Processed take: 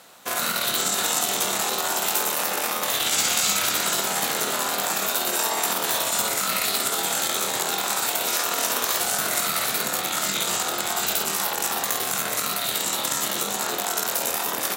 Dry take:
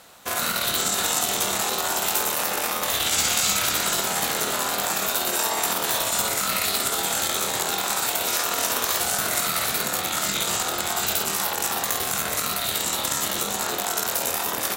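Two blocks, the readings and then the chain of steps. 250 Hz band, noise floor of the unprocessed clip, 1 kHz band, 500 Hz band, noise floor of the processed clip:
−0.5 dB, −29 dBFS, 0.0 dB, 0.0 dB, −29 dBFS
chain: high-pass filter 140 Hz 12 dB per octave

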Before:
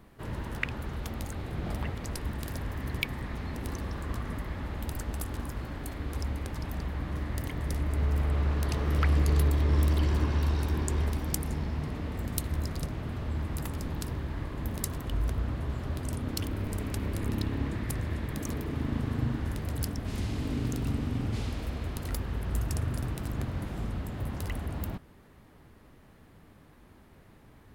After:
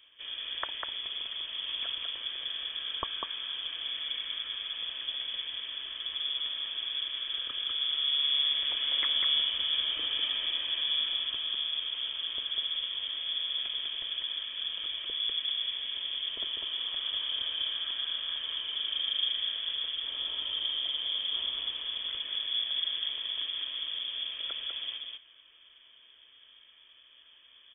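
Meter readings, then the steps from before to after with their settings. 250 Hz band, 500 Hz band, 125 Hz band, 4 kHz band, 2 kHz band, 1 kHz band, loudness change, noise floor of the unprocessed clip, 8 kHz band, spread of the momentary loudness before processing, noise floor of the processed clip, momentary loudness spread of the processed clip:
below −25 dB, −15.5 dB, below −35 dB, +20.5 dB, −0.5 dB, −7.0 dB, +2.0 dB, −56 dBFS, below −35 dB, 9 LU, −58 dBFS, 8 LU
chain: notch comb filter 650 Hz
single-tap delay 198 ms −3.5 dB
voice inversion scrambler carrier 3,400 Hz
level −3 dB

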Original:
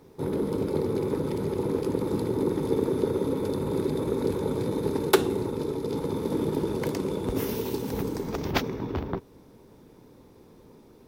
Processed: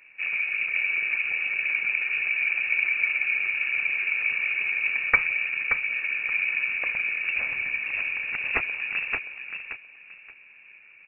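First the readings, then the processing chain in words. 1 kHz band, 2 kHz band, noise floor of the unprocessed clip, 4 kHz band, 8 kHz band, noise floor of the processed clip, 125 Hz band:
−6.0 dB, +20.5 dB, −53 dBFS, 0.0 dB, below −35 dB, −52 dBFS, below −20 dB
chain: voice inversion scrambler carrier 2,700 Hz
repeating echo 576 ms, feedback 24%, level −7 dB

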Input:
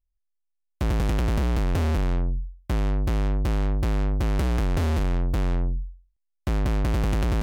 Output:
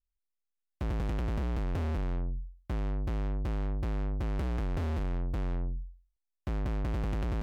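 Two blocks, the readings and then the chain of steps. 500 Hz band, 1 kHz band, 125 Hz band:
−8.5 dB, −9.0 dB, −8.5 dB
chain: high-shelf EQ 4,300 Hz −10 dB
level −8.5 dB

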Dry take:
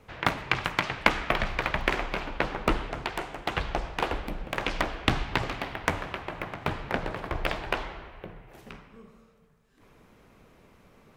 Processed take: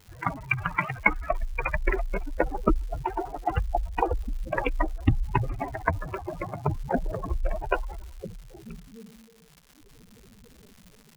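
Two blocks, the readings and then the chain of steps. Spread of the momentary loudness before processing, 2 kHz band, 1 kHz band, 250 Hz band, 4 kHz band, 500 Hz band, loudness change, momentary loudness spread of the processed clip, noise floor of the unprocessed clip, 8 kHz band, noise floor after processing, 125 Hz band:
15 LU, −1.5 dB, +1.0 dB, +2.0 dB, −16.0 dB, +2.0 dB, +1.0 dB, 16 LU, −59 dBFS, can't be measured, −56 dBFS, +5.0 dB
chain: expanding power law on the bin magnitudes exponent 3.8
automatic gain control gain up to 7.5 dB
surface crackle 290 per second −38 dBFS
level −2.5 dB

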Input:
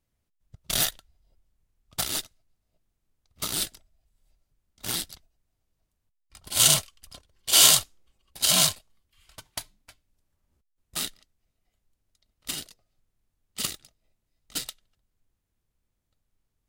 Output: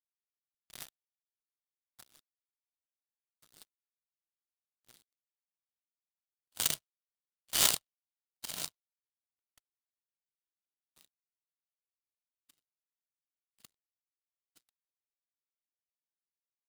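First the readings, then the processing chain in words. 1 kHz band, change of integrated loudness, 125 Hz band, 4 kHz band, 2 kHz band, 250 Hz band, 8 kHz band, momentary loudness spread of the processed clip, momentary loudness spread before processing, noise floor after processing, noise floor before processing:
−12.5 dB, −8.5 dB, −19.0 dB, −14.5 dB, −11.5 dB, −16.0 dB, −14.0 dB, 22 LU, 22 LU, below −85 dBFS, −80 dBFS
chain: far-end echo of a speakerphone 100 ms, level −14 dB
power curve on the samples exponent 3

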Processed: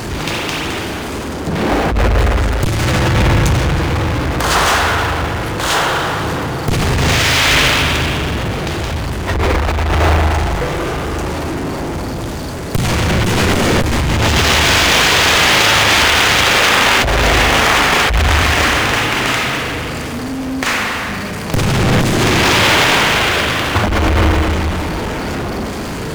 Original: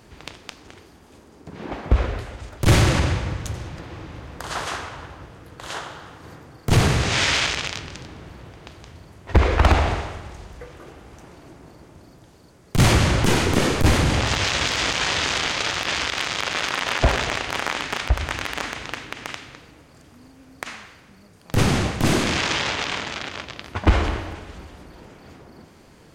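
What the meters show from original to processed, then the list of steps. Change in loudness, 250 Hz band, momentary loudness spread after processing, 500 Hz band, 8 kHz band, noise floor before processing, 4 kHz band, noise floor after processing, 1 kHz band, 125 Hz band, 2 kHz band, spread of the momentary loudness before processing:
+8.5 dB, +9.0 dB, 12 LU, +10.5 dB, +10.5 dB, −50 dBFS, +11.5 dB, −23 dBFS, +12.0 dB, +7.5 dB, +12.5 dB, 20 LU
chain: spring reverb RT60 1.7 s, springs 38/56 ms, chirp 50 ms, DRR 2.5 dB
compressor whose output falls as the input rises −23 dBFS, ratio −1
power curve on the samples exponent 0.5
level +2 dB

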